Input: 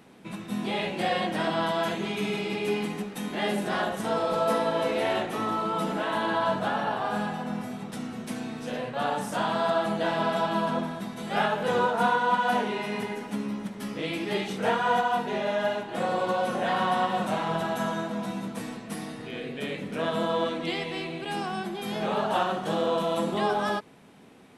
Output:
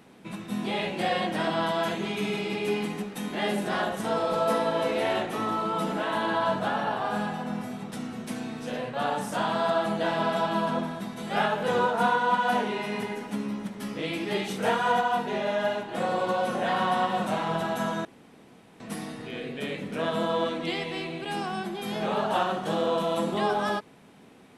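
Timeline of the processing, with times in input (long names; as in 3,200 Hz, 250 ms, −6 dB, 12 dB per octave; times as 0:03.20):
0:14.44–0:14.92: high-shelf EQ 7,300 Hz +8 dB
0:18.05–0:18.80: fill with room tone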